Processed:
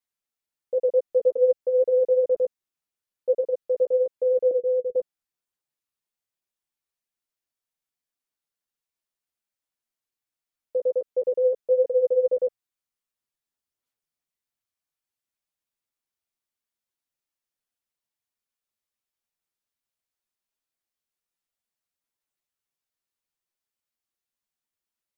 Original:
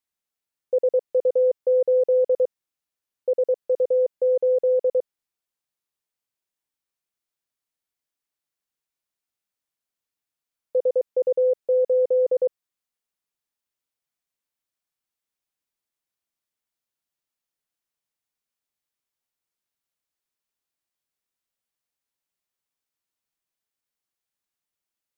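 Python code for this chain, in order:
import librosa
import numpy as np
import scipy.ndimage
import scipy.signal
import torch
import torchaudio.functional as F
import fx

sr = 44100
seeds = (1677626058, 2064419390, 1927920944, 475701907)

y = fx.chorus_voices(x, sr, voices=6, hz=1.5, base_ms=11, depth_ms=3.0, mix_pct=40)
y = fx.cheby_ripple(y, sr, hz=510.0, ripple_db=3, at=(4.51, 4.96))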